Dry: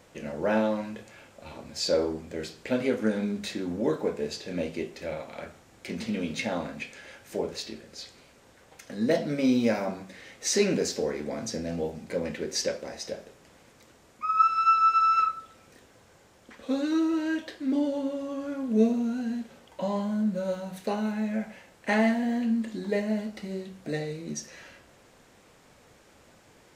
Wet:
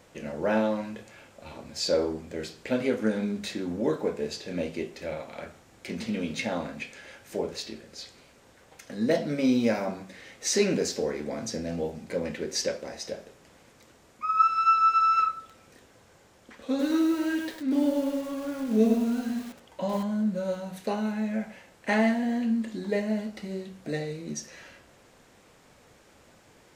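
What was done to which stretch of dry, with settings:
15.39–20.03 lo-fi delay 0.103 s, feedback 35%, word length 7-bit, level -5 dB

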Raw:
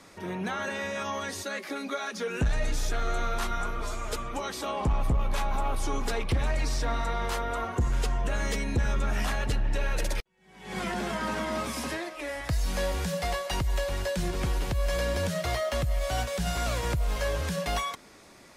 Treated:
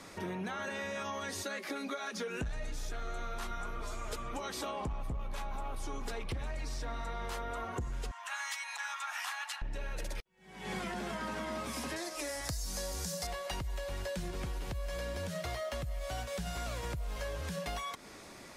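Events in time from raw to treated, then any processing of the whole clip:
8.11–9.62 steep high-pass 830 Hz 48 dB/oct
11.96–13.27 resonant high shelf 4000 Hz +10 dB, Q 1.5
whole clip: compressor 6:1, threshold -38 dBFS; gain +2 dB

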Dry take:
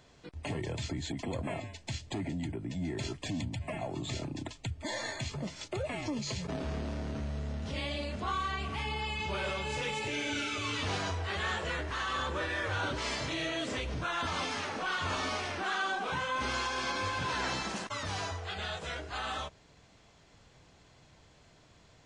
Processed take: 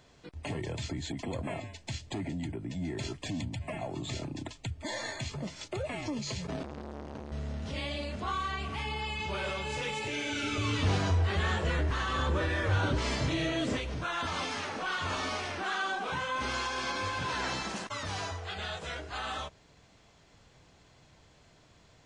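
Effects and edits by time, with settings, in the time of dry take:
6.63–7.32 core saturation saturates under 670 Hz
10.43–13.77 low shelf 350 Hz +11 dB

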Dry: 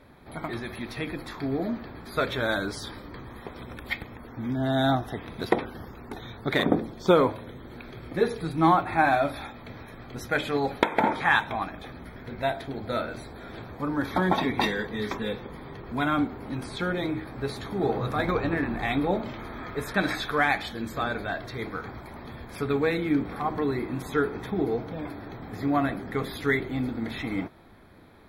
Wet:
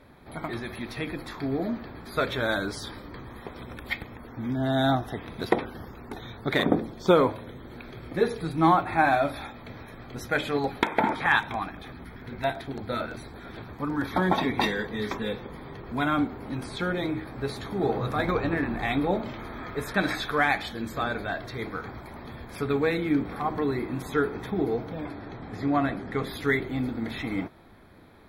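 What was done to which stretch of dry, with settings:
10.53–14.17 LFO notch square 8.9 Hz 570–7000 Hz
25.05–26.27 LPF 8300 Hz

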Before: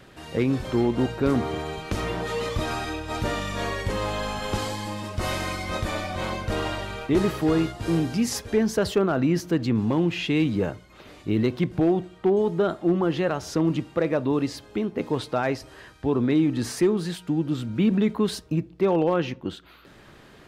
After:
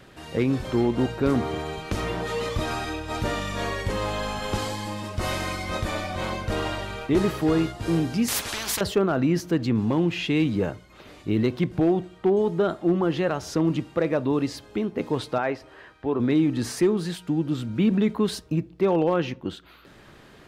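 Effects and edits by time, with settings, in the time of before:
8.28–8.81 spectral compressor 10:1
15.38–16.2 tone controls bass -8 dB, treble -13 dB

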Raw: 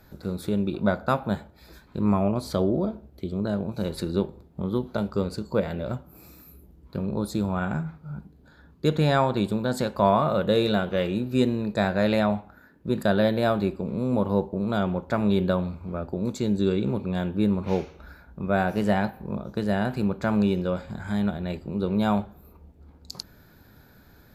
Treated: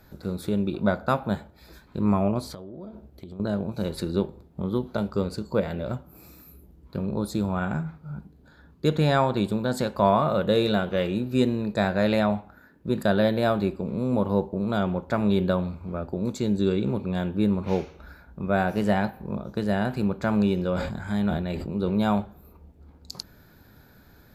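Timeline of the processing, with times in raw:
2.44–3.4 compressor 16:1, threshold -35 dBFS
20.55–22.02 sustainer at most 43 dB/s

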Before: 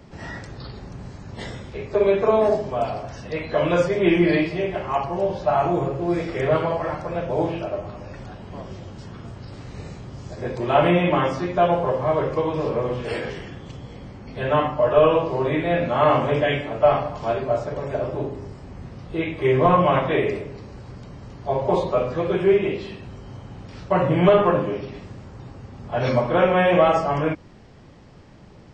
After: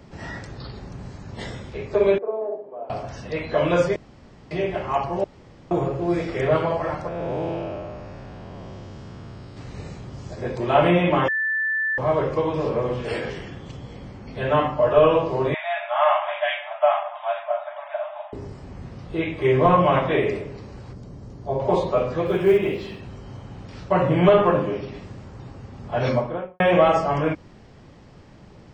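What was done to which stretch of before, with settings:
2.18–2.9 ladder band-pass 520 Hz, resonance 35%
3.96–4.51 room tone
5.24–5.71 room tone
7.08–9.57 time blur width 0.315 s
11.28–11.98 bleep 1760 Hz -20.5 dBFS
15.54–18.33 brick-wall FIR band-pass 580–3800 Hz
20.93–21.6 EQ curve 400 Hz 0 dB, 940 Hz -6 dB, 2700 Hz -11 dB, 6000 Hz -3 dB
22.26–23 companded quantiser 8-bit
26.01–26.6 studio fade out

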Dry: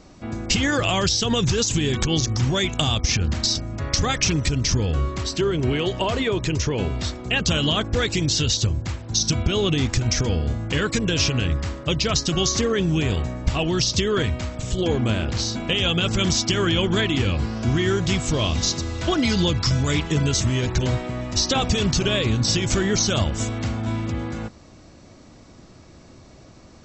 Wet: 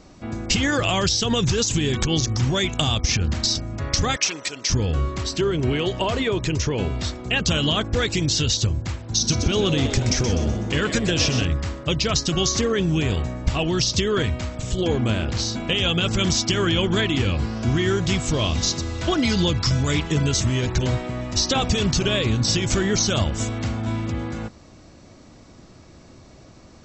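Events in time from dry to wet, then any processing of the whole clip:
4.16–4.7 HPF 550 Hz
9.06–11.45 frequency-shifting echo 0.125 s, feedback 44%, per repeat +130 Hz, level -9 dB

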